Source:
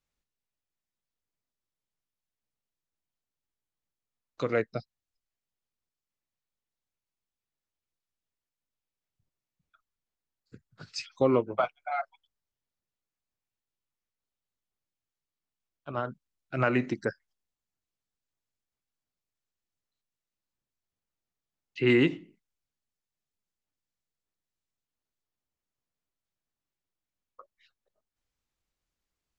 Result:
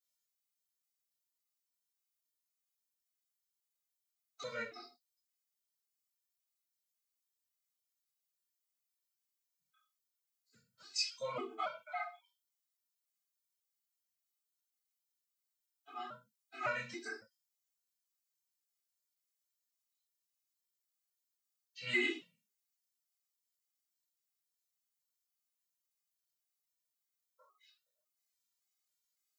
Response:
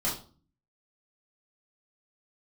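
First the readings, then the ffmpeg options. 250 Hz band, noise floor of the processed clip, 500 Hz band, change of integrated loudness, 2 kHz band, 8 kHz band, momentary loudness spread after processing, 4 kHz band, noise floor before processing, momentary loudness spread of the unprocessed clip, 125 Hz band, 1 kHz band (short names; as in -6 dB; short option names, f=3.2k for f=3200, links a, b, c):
-18.5 dB, under -85 dBFS, -16.0 dB, -10.5 dB, -5.0 dB, n/a, 19 LU, -0.5 dB, under -85 dBFS, 15 LU, -23.5 dB, -8.5 dB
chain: -filter_complex "[0:a]aderivative[a];[1:a]atrim=start_sample=2205,afade=t=out:st=0.23:d=0.01,atrim=end_sample=10584[b];[a][b]afir=irnorm=-1:irlink=0,afftfilt=real='re*gt(sin(2*PI*1.8*pts/sr)*(1-2*mod(floor(b*sr/1024/220),2)),0)':imag='im*gt(sin(2*PI*1.8*pts/sr)*(1-2*mod(floor(b*sr/1024/220),2)),0)':win_size=1024:overlap=0.75,volume=2dB"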